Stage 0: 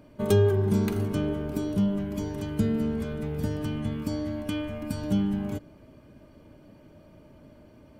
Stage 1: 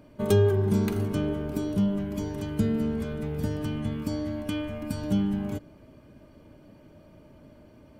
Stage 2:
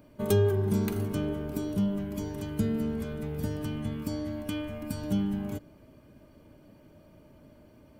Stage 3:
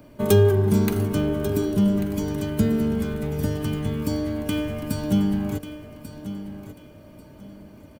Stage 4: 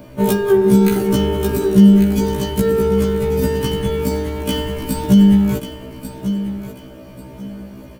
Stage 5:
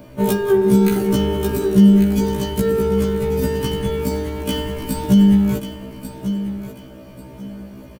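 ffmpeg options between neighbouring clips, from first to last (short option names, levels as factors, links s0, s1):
-af anull
-af "highshelf=f=11000:g=10,volume=0.708"
-filter_complex "[0:a]acrossover=split=190|1500[s0][s1][s2];[s2]acrusher=bits=2:mode=log:mix=0:aa=0.000001[s3];[s0][s1][s3]amix=inputs=3:normalize=0,aecho=1:1:1141|2282|3423:0.237|0.0617|0.016,volume=2.37"
-af "alimiter=level_in=4.73:limit=0.891:release=50:level=0:latency=1,afftfilt=real='re*1.73*eq(mod(b,3),0)':imag='im*1.73*eq(mod(b,3),0)':win_size=2048:overlap=0.75,volume=0.841"
-af "aecho=1:1:165|330|495|660:0.0708|0.0389|0.0214|0.0118,volume=0.794"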